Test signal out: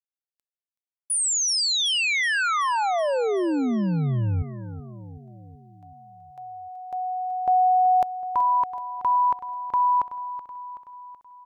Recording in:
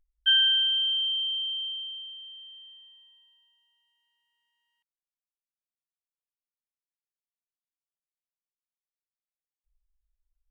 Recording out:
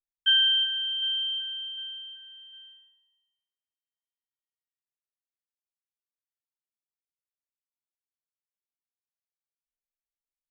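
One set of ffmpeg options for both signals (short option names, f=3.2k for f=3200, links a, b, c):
-af "aecho=1:1:377|754|1131|1508|1885|2262:0.224|0.128|0.0727|0.0415|0.0236|0.0135,agate=range=-33dB:threshold=-49dB:ratio=3:detection=peak"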